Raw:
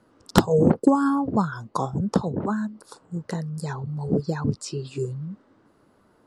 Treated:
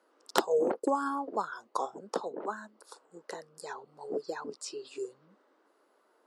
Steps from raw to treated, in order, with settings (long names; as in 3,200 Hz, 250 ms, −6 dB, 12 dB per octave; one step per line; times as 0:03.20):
high-pass filter 370 Hz 24 dB per octave
level −5.5 dB